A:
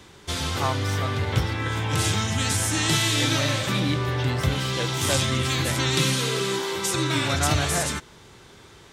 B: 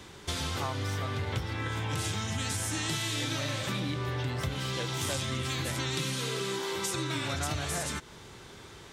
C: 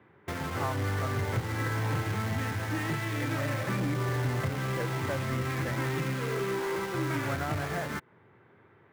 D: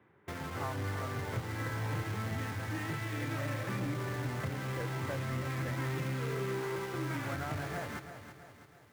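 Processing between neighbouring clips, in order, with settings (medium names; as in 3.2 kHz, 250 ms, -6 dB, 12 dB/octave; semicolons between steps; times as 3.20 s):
compression 4:1, threshold -31 dBFS, peak gain reduction 12.5 dB
Chebyshev band-pass 100–2000 Hz, order 3; in parallel at -8 dB: companded quantiser 2-bit; on the sum: upward expansion 1.5:1, over -43 dBFS
bit-crushed delay 329 ms, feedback 55%, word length 9-bit, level -10 dB; trim -6 dB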